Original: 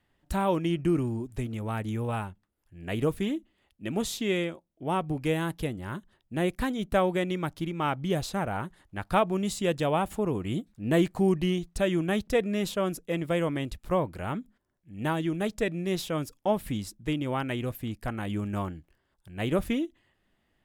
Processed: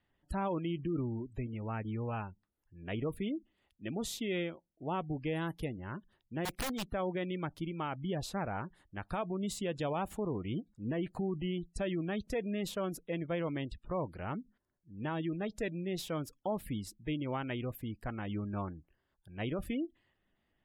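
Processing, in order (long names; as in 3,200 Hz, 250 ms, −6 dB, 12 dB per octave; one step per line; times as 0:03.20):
0:06.45–0:06.89: wrap-around overflow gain 24 dB
brickwall limiter −20.5 dBFS, peak gain reduction 9.5 dB
gate on every frequency bin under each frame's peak −30 dB strong
level −6 dB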